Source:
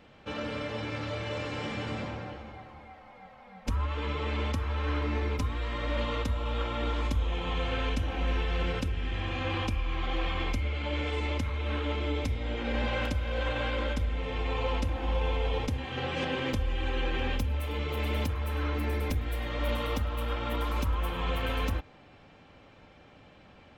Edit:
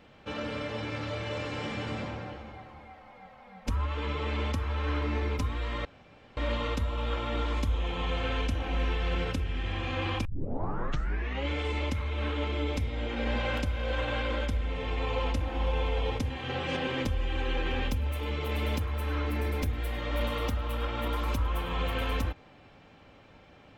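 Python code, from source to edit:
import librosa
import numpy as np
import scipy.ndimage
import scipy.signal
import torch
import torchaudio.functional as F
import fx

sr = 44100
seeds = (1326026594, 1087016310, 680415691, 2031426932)

y = fx.edit(x, sr, fx.insert_room_tone(at_s=5.85, length_s=0.52),
    fx.tape_start(start_s=9.73, length_s=1.24), tone=tone)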